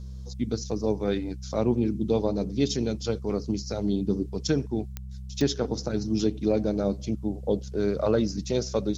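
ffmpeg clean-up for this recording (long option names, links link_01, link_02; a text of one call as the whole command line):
ffmpeg -i in.wav -af "adeclick=threshold=4,bandreject=frequency=64.7:width_type=h:width=4,bandreject=frequency=129.4:width_type=h:width=4,bandreject=frequency=194.1:width_type=h:width=4" out.wav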